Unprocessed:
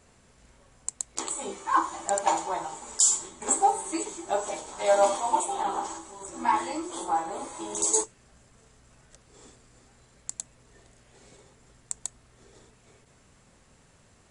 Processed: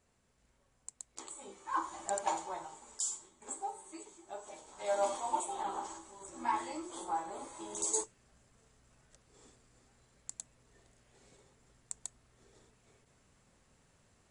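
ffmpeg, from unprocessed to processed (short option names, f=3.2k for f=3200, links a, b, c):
-af "volume=1dB,afade=t=in:st=1.54:d=0.49:silence=0.446684,afade=t=out:st=2.03:d=1.24:silence=0.316228,afade=t=in:st=4.42:d=0.81:silence=0.354813"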